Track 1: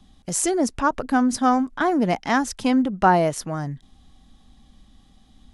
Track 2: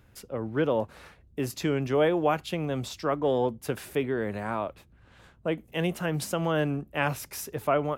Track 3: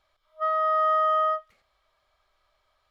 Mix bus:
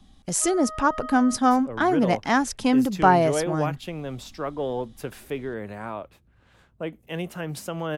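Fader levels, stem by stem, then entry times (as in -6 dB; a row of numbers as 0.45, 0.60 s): -0.5, -3.0, -14.0 dB; 0.00, 1.35, 0.00 s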